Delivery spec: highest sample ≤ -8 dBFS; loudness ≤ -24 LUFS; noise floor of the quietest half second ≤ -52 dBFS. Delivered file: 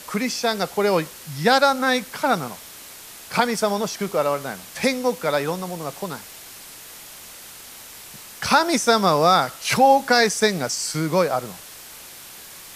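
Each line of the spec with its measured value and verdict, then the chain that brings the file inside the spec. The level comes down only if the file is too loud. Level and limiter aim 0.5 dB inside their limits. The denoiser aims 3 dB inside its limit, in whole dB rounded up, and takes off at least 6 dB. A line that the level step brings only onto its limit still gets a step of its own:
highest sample -3.5 dBFS: fail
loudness -20.5 LUFS: fail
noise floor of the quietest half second -41 dBFS: fail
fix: noise reduction 10 dB, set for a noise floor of -41 dBFS; trim -4 dB; peak limiter -8.5 dBFS

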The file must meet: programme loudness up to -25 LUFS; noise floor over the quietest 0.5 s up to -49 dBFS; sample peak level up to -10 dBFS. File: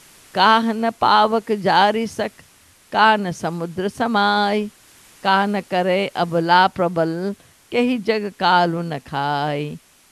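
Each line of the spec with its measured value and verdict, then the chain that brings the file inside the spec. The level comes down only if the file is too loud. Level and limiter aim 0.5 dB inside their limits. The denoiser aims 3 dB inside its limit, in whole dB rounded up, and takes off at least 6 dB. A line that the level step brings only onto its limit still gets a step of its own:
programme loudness -19.0 LUFS: fail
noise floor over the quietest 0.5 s -52 dBFS: pass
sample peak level -2.5 dBFS: fail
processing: trim -6.5 dB; peak limiter -10.5 dBFS

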